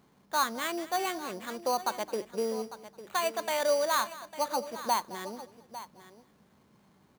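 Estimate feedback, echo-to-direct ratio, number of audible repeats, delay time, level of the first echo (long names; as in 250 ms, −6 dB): repeats not evenly spaced, −13.0 dB, 4, 215 ms, −18.0 dB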